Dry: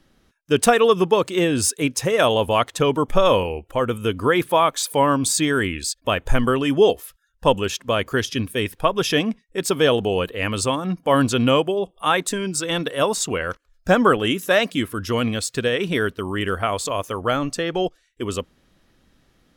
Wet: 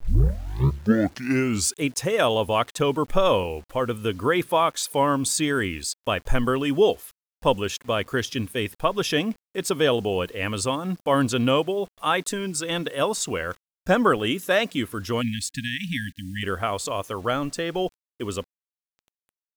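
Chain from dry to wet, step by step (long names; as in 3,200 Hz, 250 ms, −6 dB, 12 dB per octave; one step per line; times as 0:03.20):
turntable start at the beginning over 1.81 s
bit reduction 8 bits
time-frequency box erased 0:15.21–0:16.43, 300–1,600 Hz
level −3.5 dB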